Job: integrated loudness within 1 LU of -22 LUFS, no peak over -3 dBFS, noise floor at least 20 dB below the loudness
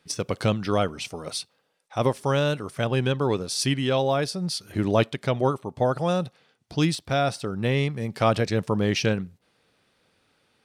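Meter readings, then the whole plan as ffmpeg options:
loudness -25.5 LUFS; peak -7.5 dBFS; loudness target -22.0 LUFS
-> -af "volume=3.5dB"

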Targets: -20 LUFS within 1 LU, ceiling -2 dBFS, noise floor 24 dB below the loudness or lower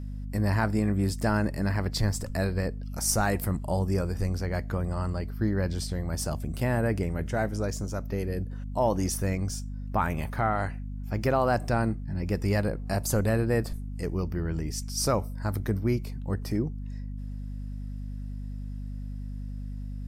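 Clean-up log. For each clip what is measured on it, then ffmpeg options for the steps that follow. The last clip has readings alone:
hum 50 Hz; harmonics up to 250 Hz; hum level -33 dBFS; loudness -29.5 LUFS; peak -12.5 dBFS; loudness target -20.0 LUFS
-> -af "bandreject=f=50:t=h:w=6,bandreject=f=100:t=h:w=6,bandreject=f=150:t=h:w=6,bandreject=f=200:t=h:w=6,bandreject=f=250:t=h:w=6"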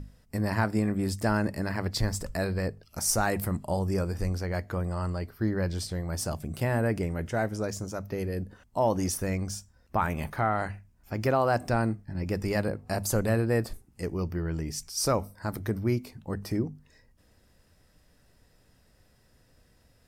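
hum none; loudness -30.0 LUFS; peak -13.5 dBFS; loudness target -20.0 LUFS
-> -af "volume=10dB"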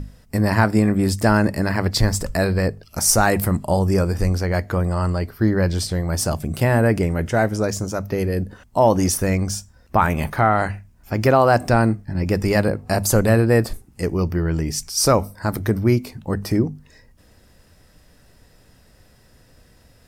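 loudness -20.0 LUFS; peak -3.5 dBFS; noise floor -53 dBFS

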